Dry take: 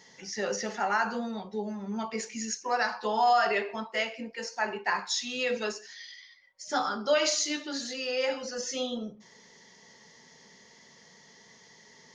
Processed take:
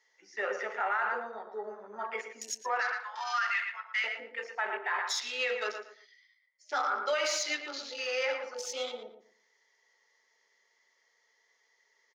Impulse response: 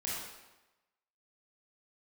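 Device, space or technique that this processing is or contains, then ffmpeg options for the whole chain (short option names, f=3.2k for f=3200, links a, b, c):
laptop speaker: -filter_complex "[0:a]asettb=1/sr,asplit=3[a][b][c];[a]atrim=end=2.804[d];[b]atrim=start=2.8:end=4.04,asetpts=PTS-STARTPTS,afade=t=in:d=0.004:c=qsin,afade=t=out:st=1.236:d=0.004:c=qsin,highpass=f=1.2k:w=0.5412,highpass=f=1.2k:w=1.3066[e];[c]atrim=start=4.036[f];[d][e]acrossfade=d=0.004:c1=hsin:c2=qsin[g];[g][f]acrossfade=d=0.004:c1=qsin:c2=hsin,afwtdn=0.01,highpass=f=400:w=0.5412,highpass=f=400:w=1.3066,equalizer=f=1.3k:t=o:w=0.42:g=6.5,equalizer=f=2.1k:t=o:w=0.59:g=7,asplit=2[h][i];[i]adelay=115,lowpass=f=2.6k:p=1,volume=-7.5dB,asplit=2[j][k];[k]adelay=115,lowpass=f=2.6k:p=1,volume=0.26,asplit=2[l][m];[m]adelay=115,lowpass=f=2.6k:p=1,volume=0.26[n];[h][j][l][n]amix=inputs=4:normalize=0,alimiter=limit=-19dB:level=0:latency=1:release=32,volume=-2.5dB"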